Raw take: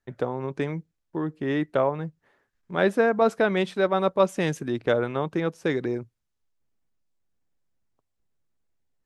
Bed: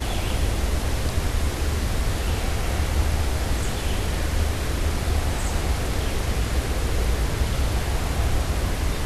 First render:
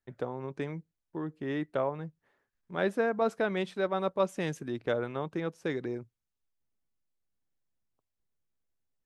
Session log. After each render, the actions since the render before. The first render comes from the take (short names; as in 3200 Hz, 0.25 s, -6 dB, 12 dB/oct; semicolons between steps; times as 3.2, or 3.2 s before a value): gain -7.5 dB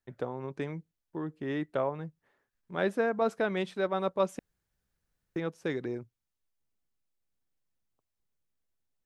4.39–5.36 room tone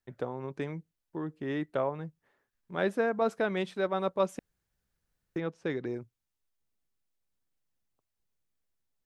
5.38–5.85 air absorption 84 m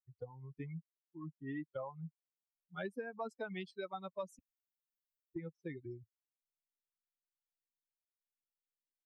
per-bin expansion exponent 3; compressor 6:1, threshold -39 dBFS, peak gain reduction 13.5 dB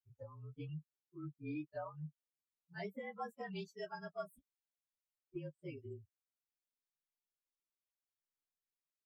inharmonic rescaling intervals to 112%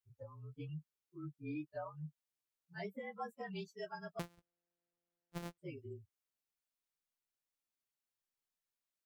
4.19–5.58 sample sorter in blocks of 256 samples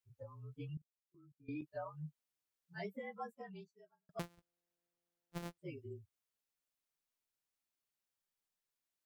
0.77–1.62 level quantiser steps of 21 dB; 2.96–4.09 studio fade out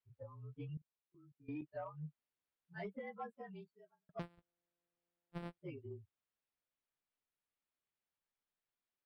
running mean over 7 samples; soft clip -33.5 dBFS, distortion -24 dB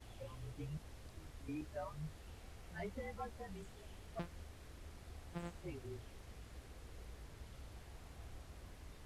add bed -30.5 dB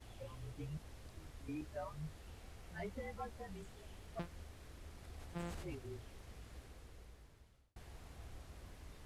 4.98–5.75 sustainer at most 25 dB/s; 6.56–7.76 fade out